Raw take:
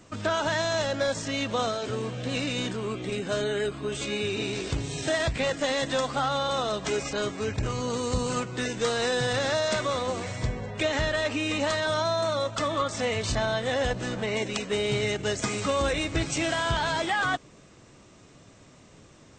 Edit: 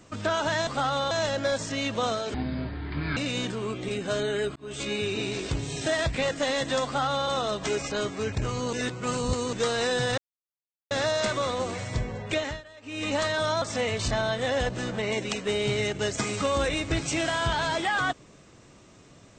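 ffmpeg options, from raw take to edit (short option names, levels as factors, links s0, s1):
-filter_complex "[0:a]asplit=12[s0][s1][s2][s3][s4][s5][s6][s7][s8][s9][s10][s11];[s0]atrim=end=0.672[s12];[s1]atrim=start=6.058:end=6.502[s13];[s2]atrim=start=0.668:end=1.904[s14];[s3]atrim=start=1.9:end=2.38,asetpts=PTS-STARTPTS,asetrate=25578,aresample=44100[s15];[s4]atrim=start=2.376:end=3.77,asetpts=PTS-STARTPTS,afade=t=out:st=1.39:d=0.004:c=hsin[s16];[s5]atrim=start=3.77:end=7.942,asetpts=PTS-STARTPTS,afade=t=in:d=0.28[s17];[s6]atrim=start=7.938:end=8.742,asetpts=PTS-STARTPTS,areverse[s18];[s7]atrim=start=8.738:end=9.39,asetpts=PTS-STARTPTS,afade=t=out:st=0.648:d=0.004:c=hsin,apad=pad_dur=0.73[s19];[s8]atrim=start=9.39:end=11.11,asetpts=PTS-STARTPTS,afade=t=in:d=0.004:c=hsin,afade=t=out:st=1.42:d=0.3:silence=0.0841395[s20];[s9]atrim=start=11.11:end=11.3,asetpts=PTS-STARTPTS,volume=0.0841[s21];[s10]atrim=start=11.3:end=12.102,asetpts=PTS-STARTPTS,afade=t=in:d=0.3:silence=0.0841395[s22];[s11]atrim=start=12.858[s23];[s12][s13]acrossfade=d=0.004:c1=hsin:c2=hsin[s24];[s24][s14]acrossfade=d=0.004:c1=hsin:c2=hsin[s25];[s25][s15]acrossfade=d=0.004:c1=hsin:c2=hsin[s26];[s16][s17]concat=n=2:v=0:a=1[s27];[s26][s27]acrossfade=d=0.004:c1=hsin:c2=hsin[s28];[s28][s18]acrossfade=d=0.004:c1=hsin:c2=hsin[s29];[s19][s20][s21][s22]concat=n=4:v=0:a=1[s30];[s29][s30]acrossfade=d=0.004:c1=hsin:c2=hsin[s31];[s31][s23]acrossfade=d=0.004:c1=hsin:c2=hsin"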